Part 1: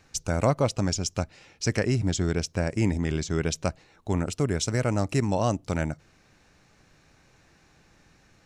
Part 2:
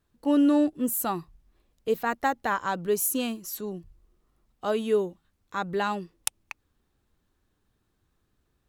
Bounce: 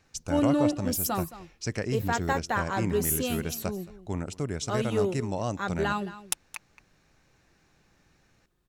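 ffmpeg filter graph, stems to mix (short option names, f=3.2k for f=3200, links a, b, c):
-filter_complex "[0:a]volume=-6dB,asplit=2[a][b];[b]volume=-23dB[c];[1:a]aecho=1:1:5.6:0.37,adelay=50,volume=-1.5dB,asplit=2[d][e];[e]volume=-15.5dB[f];[c][f]amix=inputs=2:normalize=0,aecho=0:1:220:1[g];[a][d][g]amix=inputs=3:normalize=0"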